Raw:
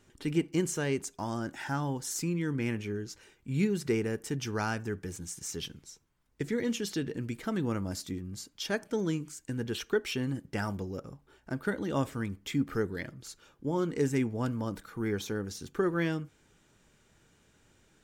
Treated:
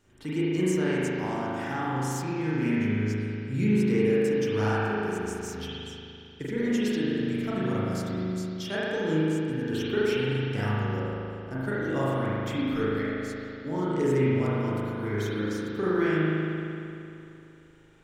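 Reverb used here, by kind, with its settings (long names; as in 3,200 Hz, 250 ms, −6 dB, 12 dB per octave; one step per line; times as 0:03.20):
spring reverb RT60 2.8 s, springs 38 ms, chirp 80 ms, DRR −9 dB
level −4 dB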